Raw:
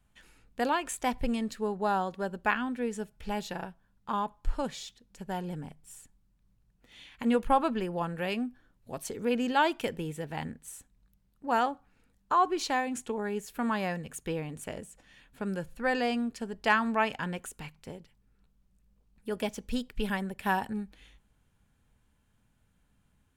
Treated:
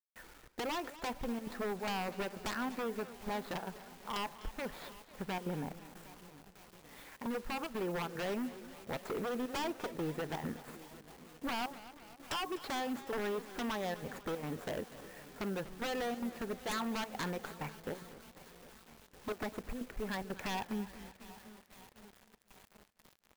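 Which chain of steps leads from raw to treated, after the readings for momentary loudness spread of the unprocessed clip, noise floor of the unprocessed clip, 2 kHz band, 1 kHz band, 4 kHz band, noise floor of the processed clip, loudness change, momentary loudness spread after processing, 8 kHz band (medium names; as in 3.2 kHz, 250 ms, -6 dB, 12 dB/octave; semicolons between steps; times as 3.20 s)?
18 LU, -70 dBFS, -8.5 dB, -10.0 dB, -3.5 dB, -65 dBFS, -8.0 dB, 17 LU, -6.5 dB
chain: median filter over 15 samples; trance gate ".xxxxx.xxxx" 184 bpm -12 dB; in parallel at -1.5 dB: peak limiter -22 dBFS, peak gain reduction 8.5 dB; on the sum: compression 16:1, threshold -31 dBFS, peak gain reduction 15.5 dB; tone controls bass -9 dB, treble -14 dB; wavefolder -34.5 dBFS; on a send: shuffle delay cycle 1265 ms, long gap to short 1.5:1, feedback 47%, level -20.5 dB; on the sum: bit crusher 10-bit; treble shelf 10 kHz +6.5 dB; modulated delay 248 ms, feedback 56%, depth 115 cents, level -16 dB; trim +3 dB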